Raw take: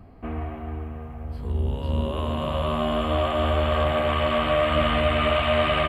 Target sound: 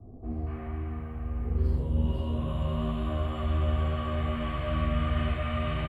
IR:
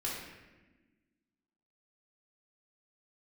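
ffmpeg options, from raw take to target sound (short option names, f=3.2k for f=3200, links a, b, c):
-filter_complex "[0:a]acrossover=split=200[a][b];[b]acompressor=threshold=-45dB:ratio=2[c];[a][c]amix=inputs=2:normalize=0,acrossover=split=740|3400[d][e][f];[e]adelay=240[g];[f]adelay=310[h];[d][g][h]amix=inputs=3:normalize=0[i];[1:a]atrim=start_sample=2205,atrim=end_sample=6174[j];[i][j]afir=irnorm=-1:irlink=0,volume=-1dB"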